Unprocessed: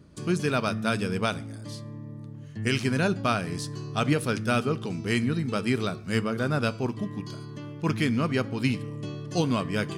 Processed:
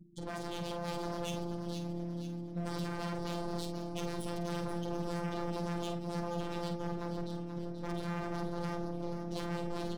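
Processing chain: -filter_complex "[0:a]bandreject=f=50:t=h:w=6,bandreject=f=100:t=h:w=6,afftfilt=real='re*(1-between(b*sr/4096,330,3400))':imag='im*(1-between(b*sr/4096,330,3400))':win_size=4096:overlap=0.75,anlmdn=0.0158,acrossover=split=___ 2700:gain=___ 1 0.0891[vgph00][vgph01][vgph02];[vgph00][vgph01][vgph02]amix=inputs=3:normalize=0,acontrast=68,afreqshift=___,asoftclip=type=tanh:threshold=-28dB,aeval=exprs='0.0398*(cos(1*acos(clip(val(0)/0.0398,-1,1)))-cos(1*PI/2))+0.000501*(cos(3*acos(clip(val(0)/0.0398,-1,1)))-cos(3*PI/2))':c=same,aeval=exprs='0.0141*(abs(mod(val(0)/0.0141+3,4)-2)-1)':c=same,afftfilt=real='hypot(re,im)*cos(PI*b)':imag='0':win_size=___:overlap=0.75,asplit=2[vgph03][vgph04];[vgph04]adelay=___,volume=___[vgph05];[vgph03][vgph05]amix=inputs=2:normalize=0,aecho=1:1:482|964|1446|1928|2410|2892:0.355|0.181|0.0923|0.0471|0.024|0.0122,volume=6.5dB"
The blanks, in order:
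220, 0.158, -400, 1024, 49, -8dB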